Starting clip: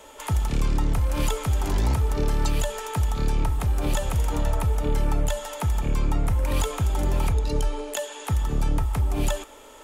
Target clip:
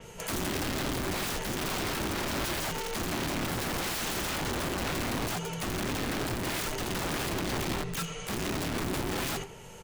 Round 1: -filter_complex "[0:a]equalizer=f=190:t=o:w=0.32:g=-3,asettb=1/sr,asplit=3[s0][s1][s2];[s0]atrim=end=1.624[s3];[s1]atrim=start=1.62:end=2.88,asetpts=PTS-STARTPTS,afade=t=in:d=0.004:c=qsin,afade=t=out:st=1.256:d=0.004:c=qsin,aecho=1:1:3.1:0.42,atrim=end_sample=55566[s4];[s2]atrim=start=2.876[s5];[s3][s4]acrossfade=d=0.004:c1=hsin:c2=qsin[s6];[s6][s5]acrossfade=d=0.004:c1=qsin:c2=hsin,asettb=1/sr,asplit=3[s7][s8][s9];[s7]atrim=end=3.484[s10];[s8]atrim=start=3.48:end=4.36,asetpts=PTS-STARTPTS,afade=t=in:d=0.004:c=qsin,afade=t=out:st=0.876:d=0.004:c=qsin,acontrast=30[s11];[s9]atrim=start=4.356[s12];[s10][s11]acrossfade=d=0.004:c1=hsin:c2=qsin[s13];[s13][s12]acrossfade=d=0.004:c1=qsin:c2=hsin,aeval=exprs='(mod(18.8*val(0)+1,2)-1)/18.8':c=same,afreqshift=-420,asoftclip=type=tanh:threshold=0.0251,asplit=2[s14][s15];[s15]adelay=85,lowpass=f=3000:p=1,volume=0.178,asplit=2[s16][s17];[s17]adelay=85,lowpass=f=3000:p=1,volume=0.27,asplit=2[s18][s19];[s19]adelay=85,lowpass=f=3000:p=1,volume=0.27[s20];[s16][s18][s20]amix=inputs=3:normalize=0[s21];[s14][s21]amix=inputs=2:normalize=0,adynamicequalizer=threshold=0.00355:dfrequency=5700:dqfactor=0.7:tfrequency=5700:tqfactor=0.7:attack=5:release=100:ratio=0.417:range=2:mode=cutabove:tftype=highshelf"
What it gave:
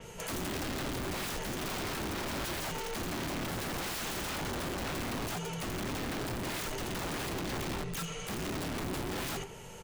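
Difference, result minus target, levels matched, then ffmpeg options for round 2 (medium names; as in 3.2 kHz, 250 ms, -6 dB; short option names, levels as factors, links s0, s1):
saturation: distortion +11 dB
-filter_complex "[0:a]equalizer=f=190:t=o:w=0.32:g=-3,asettb=1/sr,asplit=3[s0][s1][s2];[s0]atrim=end=1.624[s3];[s1]atrim=start=1.62:end=2.88,asetpts=PTS-STARTPTS,afade=t=in:d=0.004:c=qsin,afade=t=out:st=1.256:d=0.004:c=qsin,aecho=1:1:3.1:0.42,atrim=end_sample=55566[s4];[s2]atrim=start=2.876[s5];[s3][s4]acrossfade=d=0.004:c1=hsin:c2=qsin[s6];[s6][s5]acrossfade=d=0.004:c1=qsin:c2=hsin,asettb=1/sr,asplit=3[s7][s8][s9];[s7]atrim=end=3.484[s10];[s8]atrim=start=3.48:end=4.36,asetpts=PTS-STARTPTS,afade=t=in:d=0.004:c=qsin,afade=t=out:st=0.876:d=0.004:c=qsin,acontrast=30[s11];[s9]atrim=start=4.356[s12];[s10][s11]acrossfade=d=0.004:c1=hsin:c2=qsin[s13];[s13][s12]acrossfade=d=0.004:c1=qsin:c2=hsin,aeval=exprs='(mod(18.8*val(0)+1,2)-1)/18.8':c=same,afreqshift=-420,asoftclip=type=tanh:threshold=0.0841,asplit=2[s14][s15];[s15]adelay=85,lowpass=f=3000:p=1,volume=0.178,asplit=2[s16][s17];[s17]adelay=85,lowpass=f=3000:p=1,volume=0.27,asplit=2[s18][s19];[s19]adelay=85,lowpass=f=3000:p=1,volume=0.27[s20];[s16][s18][s20]amix=inputs=3:normalize=0[s21];[s14][s21]amix=inputs=2:normalize=0,adynamicequalizer=threshold=0.00355:dfrequency=5700:dqfactor=0.7:tfrequency=5700:tqfactor=0.7:attack=5:release=100:ratio=0.417:range=2:mode=cutabove:tftype=highshelf"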